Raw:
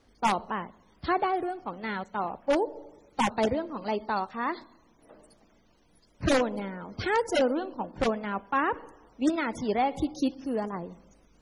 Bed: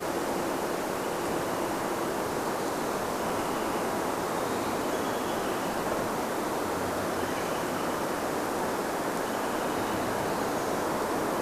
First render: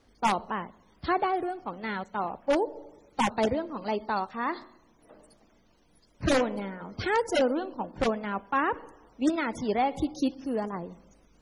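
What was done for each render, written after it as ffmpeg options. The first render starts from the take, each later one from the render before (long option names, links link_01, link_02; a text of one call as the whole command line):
ffmpeg -i in.wav -filter_complex "[0:a]asplit=3[link_01][link_02][link_03];[link_01]afade=type=out:start_time=4.51:duration=0.02[link_04];[link_02]bandreject=frequency=91.18:width_type=h:width=4,bandreject=frequency=182.36:width_type=h:width=4,bandreject=frequency=273.54:width_type=h:width=4,bandreject=frequency=364.72:width_type=h:width=4,bandreject=frequency=455.9:width_type=h:width=4,bandreject=frequency=547.08:width_type=h:width=4,bandreject=frequency=638.26:width_type=h:width=4,bandreject=frequency=729.44:width_type=h:width=4,bandreject=frequency=820.62:width_type=h:width=4,bandreject=frequency=911.8:width_type=h:width=4,bandreject=frequency=1002.98:width_type=h:width=4,bandreject=frequency=1094.16:width_type=h:width=4,bandreject=frequency=1185.34:width_type=h:width=4,bandreject=frequency=1276.52:width_type=h:width=4,bandreject=frequency=1367.7:width_type=h:width=4,bandreject=frequency=1458.88:width_type=h:width=4,bandreject=frequency=1550.06:width_type=h:width=4,bandreject=frequency=1641.24:width_type=h:width=4,bandreject=frequency=1732.42:width_type=h:width=4,bandreject=frequency=1823.6:width_type=h:width=4,bandreject=frequency=1914.78:width_type=h:width=4,bandreject=frequency=2005.96:width_type=h:width=4,bandreject=frequency=2097.14:width_type=h:width=4,bandreject=frequency=2188.32:width_type=h:width=4,bandreject=frequency=2279.5:width_type=h:width=4,bandreject=frequency=2370.68:width_type=h:width=4,bandreject=frequency=2461.86:width_type=h:width=4,bandreject=frequency=2553.04:width_type=h:width=4,bandreject=frequency=2644.22:width_type=h:width=4,bandreject=frequency=2735.4:width_type=h:width=4,bandreject=frequency=2826.58:width_type=h:width=4,bandreject=frequency=2917.76:width_type=h:width=4,bandreject=frequency=3008.94:width_type=h:width=4,bandreject=frequency=3100.12:width_type=h:width=4,bandreject=frequency=3191.3:width_type=h:width=4,afade=type=in:start_time=4.51:duration=0.02,afade=type=out:start_time=6.91:duration=0.02[link_05];[link_03]afade=type=in:start_time=6.91:duration=0.02[link_06];[link_04][link_05][link_06]amix=inputs=3:normalize=0" out.wav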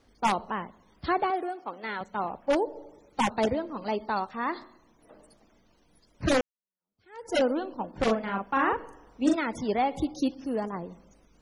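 ffmpeg -i in.wav -filter_complex "[0:a]asettb=1/sr,asplit=3[link_01][link_02][link_03];[link_01]atrim=end=1.304[link_04];[link_02]atrim=start=1.3:end=2.01,asetpts=PTS-STARTPTS,afade=type=in:duration=0.004:curve=qsin,afade=type=out:start_time=0.706:duration=0.004:curve=qsin,highpass=310[link_05];[link_03]atrim=start=2.006[link_06];[link_04][link_05]acrossfade=duration=0.004:curve1=hsin:curve2=qsin[link_07];[link_07][link_06]acrossfade=duration=0.004:curve1=qsin:curve2=hsin,asettb=1/sr,asplit=3[link_08][link_09][link_10];[link_08]atrim=end=8.034[link_11];[link_09]atrim=start=8.03:end=9.35,asetpts=PTS-STARTPTS,afade=type=in:duration=0.004:curve=qsin,afade=type=out:start_time=1.316:duration=0.004:curve=qsin,asplit=2[link_12][link_13];[link_13]adelay=41,volume=-3dB[link_14];[link_12][link_14]amix=inputs=2:normalize=0,atrim=end_sample=58212[link_15];[link_10]atrim=start=9.346[link_16];[link_11][link_15]acrossfade=duration=0.004:curve1=hsin:curve2=qsin[link_17];[link_17][link_16]acrossfade=duration=0.004:curve1=qsin:curve2=hsin,asplit=2[link_18][link_19];[link_18]atrim=end=6.41,asetpts=PTS-STARTPTS,afade=type=out:start_time=6.406:duration=0.004:curve=hsin[link_20];[link_19]atrim=start=6.41,asetpts=PTS-STARTPTS,afade=type=in:duration=0.94:curve=exp[link_21];[link_20][link_21]concat=n=2:v=0:a=1" out.wav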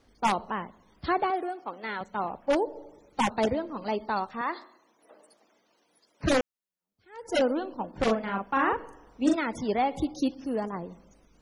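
ffmpeg -i in.wav -filter_complex "[0:a]asettb=1/sr,asplit=3[link_01][link_02][link_03];[link_01]atrim=end=4.414[link_04];[link_02]atrim=start=4.41:end=6.24,asetpts=PTS-STARTPTS,afade=type=in:duration=0.004:curve=qsin,afade=type=out:start_time=1.826:duration=0.004:curve=qsin,highpass=380[link_05];[link_03]atrim=start=6.236[link_06];[link_04][link_05]acrossfade=duration=0.004:curve1=hsin:curve2=qsin[link_07];[link_07][link_06]acrossfade=duration=0.004:curve1=qsin:curve2=hsin" out.wav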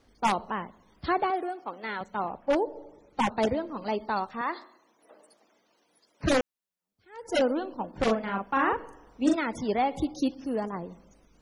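ffmpeg -i in.wav -filter_complex "[0:a]asettb=1/sr,asplit=3[link_01][link_02][link_03];[link_01]atrim=end=2.224[link_04];[link_02]atrim=start=2.22:end=3.4,asetpts=PTS-STARTPTS,afade=type=in:duration=0.004:curve=qsin,afade=type=out:start_time=1.176:duration=0.004:curve=qsin,highshelf=frequency=4800:gain=-7.5[link_05];[link_03]atrim=start=3.396[link_06];[link_04][link_05]acrossfade=duration=0.004:curve1=hsin:curve2=qsin[link_07];[link_07][link_06]acrossfade=duration=0.004:curve1=qsin:curve2=hsin" out.wav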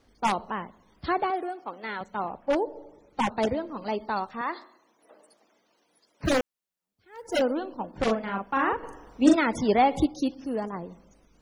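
ffmpeg -i in.wav -filter_complex "[0:a]asettb=1/sr,asplit=3[link_01][link_02][link_03];[link_01]atrim=end=6.254[link_04];[link_02]atrim=start=6.25:end=7.4,asetpts=PTS-STARTPTS,afade=type=in:duration=0.004:curve=qsin,afade=type=out:start_time=1.146:duration=0.004:curve=qsin,acrusher=bits=8:mode=log:mix=0:aa=0.000001[link_05];[link_03]atrim=start=7.396[link_06];[link_04][link_05]acrossfade=duration=0.004:curve1=hsin:curve2=qsin[link_07];[link_07][link_06]acrossfade=duration=0.004:curve1=qsin:curve2=hsin,asplit=3[link_08][link_09][link_10];[link_08]atrim=end=8.832[link_11];[link_09]atrim=start=8.828:end=10.062,asetpts=PTS-STARTPTS,volume=5.5dB[link_12];[link_10]atrim=start=10.058[link_13];[link_11][link_12]acrossfade=duration=0.004:curve1=hsin:curve2=hsin[link_14];[link_14][link_13]acrossfade=duration=0.004:curve1=hsin:curve2=hsin" out.wav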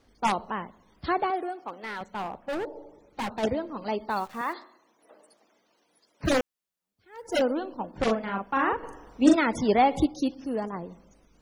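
ffmpeg -i in.wav -filter_complex "[0:a]asplit=3[link_01][link_02][link_03];[link_01]afade=type=out:start_time=1.67:duration=0.02[link_04];[link_02]volume=28.5dB,asoftclip=hard,volume=-28.5dB,afade=type=in:start_time=1.67:duration=0.02,afade=type=out:start_time=3.42:duration=0.02[link_05];[link_03]afade=type=in:start_time=3.42:duration=0.02[link_06];[link_04][link_05][link_06]amix=inputs=3:normalize=0,asplit=3[link_07][link_08][link_09];[link_07]afade=type=out:start_time=4.09:duration=0.02[link_10];[link_08]acrusher=bits=9:dc=4:mix=0:aa=0.000001,afade=type=in:start_time=4.09:duration=0.02,afade=type=out:start_time=4.52:duration=0.02[link_11];[link_09]afade=type=in:start_time=4.52:duration=0.02[link_12];[link_10][link_11][link_12]amix=inputs=3:normalize=0" out.wav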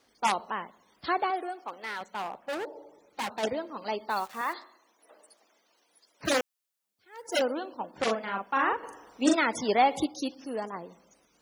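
ffmpeg -i in.wav -af "highpass=frequency=500:poles=1,highshelf=frequency=4100:gain=5" out.wav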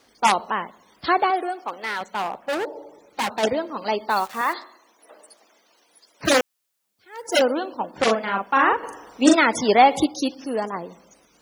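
ffmpeg -i in.wav -af "volume=8.5dB" out.wav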